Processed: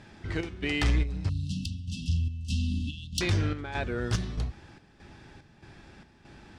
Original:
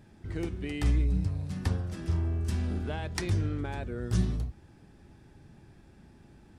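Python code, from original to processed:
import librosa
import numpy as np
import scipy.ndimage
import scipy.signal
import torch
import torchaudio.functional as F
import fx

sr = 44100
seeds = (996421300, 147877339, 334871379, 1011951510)

y = scipy.signal.sosfilt(scipy.signal.butter(2, 5500.0, 'lowpass', fs=sr, output='sos'), x)
y = fx.tilt_shelf(y, sr, db=-5.5, hz=700.0)
y = 10.0 ** (-25.0 / 20.0) * np.tanh(y / 10.0 ** (-25.0 / 20.0))
y = fx.chopper(y, sr, hz=1.6, depth_pct=60, duty_pct=65)
y = fx.brickwall_bandstop(y, sr, low_hz=300.0, high_hz=2600.0, at=(1.29, 3.21))
y = y * librosa.db_to_amplitude(8.0)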